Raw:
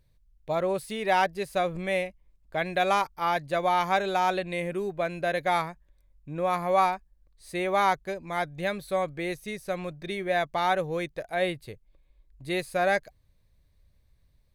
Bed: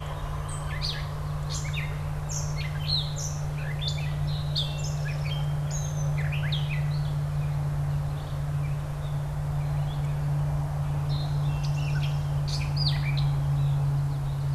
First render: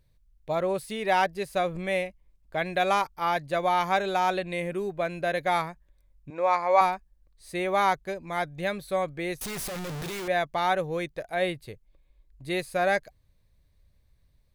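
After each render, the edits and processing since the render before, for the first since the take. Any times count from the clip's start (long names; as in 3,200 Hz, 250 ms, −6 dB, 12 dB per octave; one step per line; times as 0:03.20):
0:06.30–0:06.81: loudspeaker in its box 380–7,700 Hz, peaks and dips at 540 Hz +3 dB, 940 Hz +8 dB, 2,200 Hz +6 dB, 3,200 Hz −7 dB, 4,700 Hz +7 dB
0:09.41–0:10.28: sign of each sample alone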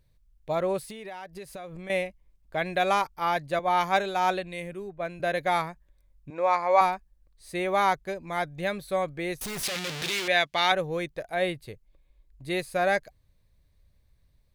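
0:00.84–0:01.90: downward compressor 12 to 1, threshold −36 dBFS
0:03.59–0:05.20: multiband upward and downward expander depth 100%
0:09.63–0:10.72: meter weighting curve D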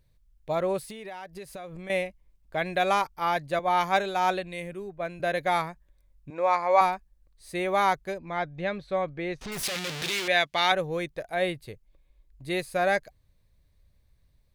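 0:08.18–0:09.52: high-frequency loss of the air 150 metres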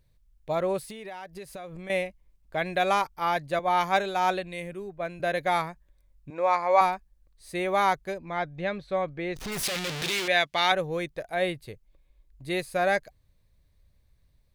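0:09.36–0:10.26: converter with a step at zero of −39 dBFS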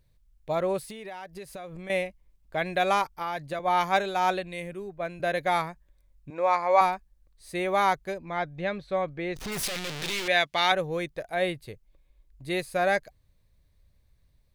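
0:03.09–0:03.60: downward compressor, threshold −27 dBFS
0:09.65–0:10.26: gain on one half-wave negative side −7 dB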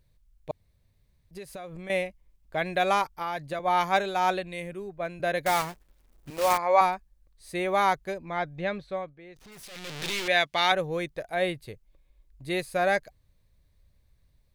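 0:00.51–0:01.31: fill with room tone
0:05.46–0:06.58: one scale factor per block 3 bits
0:08.76–0:10.07: duck −16 dB, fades 0.40 s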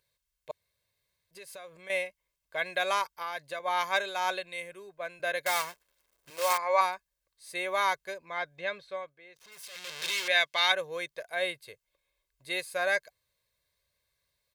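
high-pass filter 1,300 Hz 6 dB per octave
comb filter 1.9 ms, depth 50%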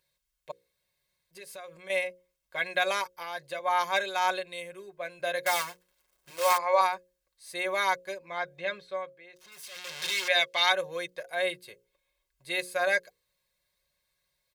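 mains-hum notches 60/120/180/240/300/360/420/480/540 Hz
comb filter 5.5 ms, depth 55%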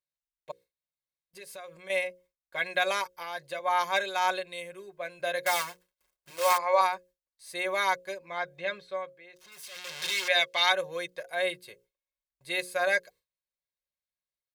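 noise gate with hold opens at −57 dBFS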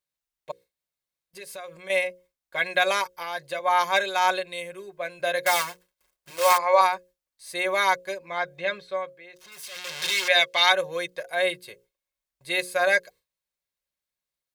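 level +5 dB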